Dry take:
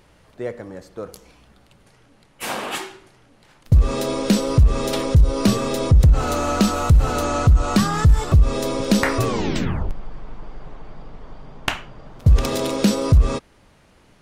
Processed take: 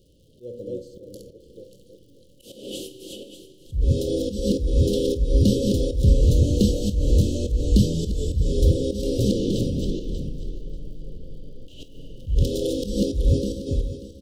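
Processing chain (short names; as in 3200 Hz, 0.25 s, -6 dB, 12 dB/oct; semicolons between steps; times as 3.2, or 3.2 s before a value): regenerating reverse delay 0.294 s, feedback 44%, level -3.5 dB; bell 840 Hz +10 dB 0.62 oct; FDN reverb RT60 2.1 s, low-frequency decay 1.05×, high-frequency decay 1×, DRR 15.5 dB; auto swell 0.176 s; high shelf 3600 Hz -5.5 dB; crackle 130/s -46 dBFS; Chebyshev band-stop 540–3000 Hz, order 5; on a send: early reflections 25 ms -12 dB, 52 ms -15.5 dB; on the sum: gain -2.5 dB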